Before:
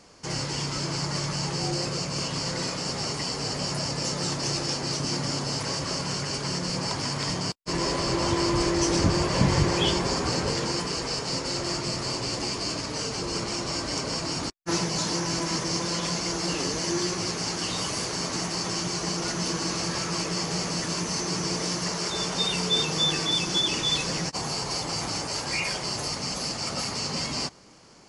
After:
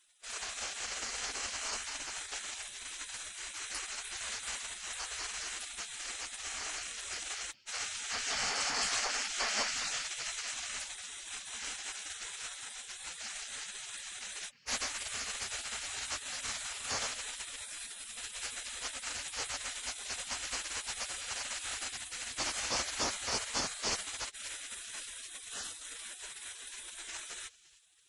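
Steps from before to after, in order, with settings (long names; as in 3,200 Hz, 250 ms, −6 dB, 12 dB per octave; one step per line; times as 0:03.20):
delay with a band-pass on its return 306 ms, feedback 37%, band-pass 910 Hz, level −12.5 dB
gate on every frequency bin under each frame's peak −20 dB weak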